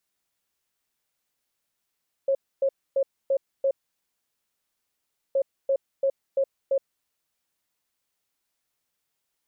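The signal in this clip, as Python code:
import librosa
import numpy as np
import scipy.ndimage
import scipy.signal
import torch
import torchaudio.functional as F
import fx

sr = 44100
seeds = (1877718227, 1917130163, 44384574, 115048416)

y = fx.beep_pattern(sr, wave='sine', hz=544.0, on_s=0.07, off_s=0.27, beeps=5, pause_s=1.64, groups=2, level_db=-19.0)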